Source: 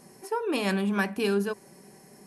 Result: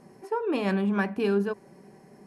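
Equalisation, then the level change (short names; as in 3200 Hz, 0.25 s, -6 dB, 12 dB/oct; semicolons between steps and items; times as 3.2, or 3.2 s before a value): LPF 1500 Hz 6 dB/oct; +1.5 dB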